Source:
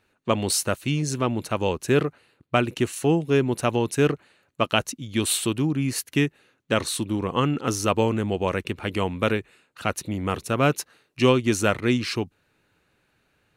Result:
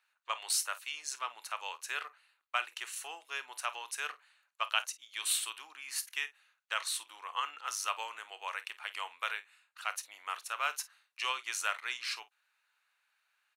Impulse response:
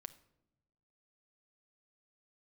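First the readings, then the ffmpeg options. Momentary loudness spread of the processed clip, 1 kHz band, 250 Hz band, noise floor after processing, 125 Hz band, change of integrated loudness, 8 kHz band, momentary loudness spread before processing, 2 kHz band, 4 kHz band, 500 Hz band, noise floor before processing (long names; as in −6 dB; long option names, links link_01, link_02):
9 LU, −9.5 dB, below −40 dB, −79 dBFS, below −40 dB, −12.5 dB, −7.0 dB, 7 LU, −7.0 dB, −7.0 dB, −28.0 dB, −70 dBFS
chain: -af "highpass=frequency=960:width=0.5412,highpass=frequency=960:width=1.3066,aecho=1:1:27|50:0.158|0.15,volume=-7dB"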